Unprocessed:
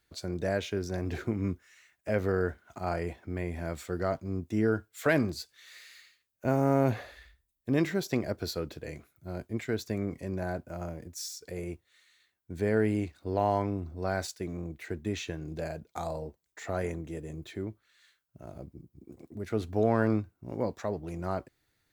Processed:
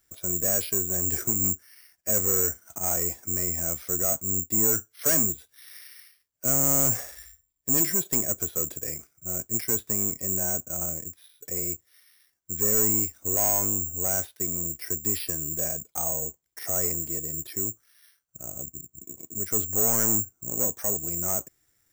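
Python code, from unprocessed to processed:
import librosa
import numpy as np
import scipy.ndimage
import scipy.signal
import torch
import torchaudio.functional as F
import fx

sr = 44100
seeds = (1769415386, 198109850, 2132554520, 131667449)

y = 10.0 ** (-24.5 / 20.0) * np.tanh(x / 10.0 ** (-24.5 / 20.0))
y = (np.kron(scipy.signal.resample_poly(y, 1, 6), np.eye(6)[0]) * 6)[:len(y)]
y = fx.notch(y, sr, hz=2600.0, q=26.0)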